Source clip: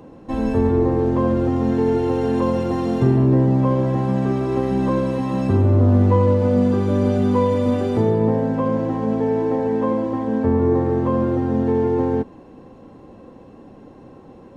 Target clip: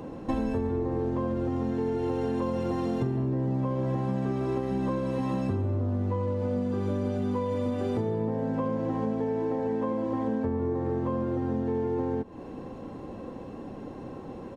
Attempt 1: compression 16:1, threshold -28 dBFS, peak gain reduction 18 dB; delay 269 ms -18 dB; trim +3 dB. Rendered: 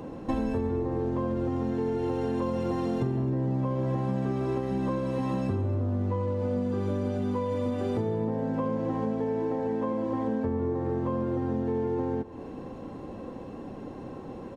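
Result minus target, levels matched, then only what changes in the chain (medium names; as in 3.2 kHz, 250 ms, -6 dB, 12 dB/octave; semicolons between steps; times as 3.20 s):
echo-to-direct +10 dB
change: delay 269 ms -28 dB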